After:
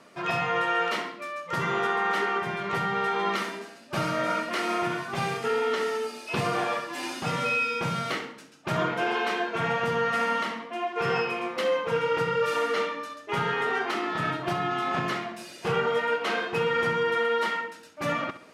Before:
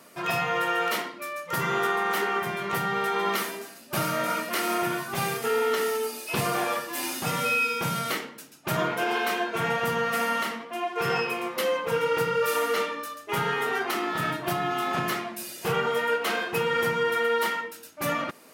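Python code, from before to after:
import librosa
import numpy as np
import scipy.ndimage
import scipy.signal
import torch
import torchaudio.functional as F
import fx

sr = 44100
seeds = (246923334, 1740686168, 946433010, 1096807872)

p1 = fx.air_absorb(x, sr, metres=83.0)
y = p1 + fx.echo_feedback(p1, sr, ms=67, feedback_pct=42, wet_db=-13, dry=0)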